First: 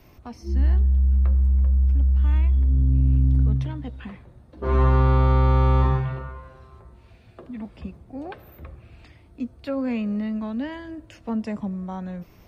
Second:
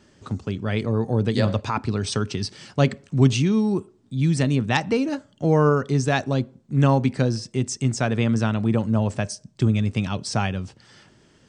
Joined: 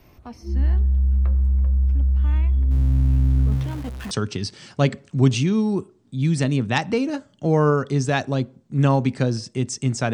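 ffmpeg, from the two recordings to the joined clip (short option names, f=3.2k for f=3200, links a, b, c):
-filter_complex "[0:a]asettb=1/sr,asplit=3[a][b][c];[a]atrim=end=2.714[d];[b]atrim=start=2.71:end=4.11,asetpts=PTS-STARTPTS,afade=t=in:d=0.004:c=qsin,afade=t=out:st=1.396:d=0.004:c=qsin,aeval=exprs='val(0)+0.5*0.0237*sgn(val(0))':c=same[e];[c]atrim=start=4.106[f];[d][e]acrossfade=d=0.004:c1=hsin:c2=qsin[g];[g][f]acrossfade=d=0.004:c1=qsin:c2=hsin,apad=whole_dur=10.13,atrim=end=10.13,atrim=end=4.112[h];[1:a]atrim=start=2.098:end=8.12[i];[h][i]acrossfade=d=0.004:c1=hsin:c2=hsin"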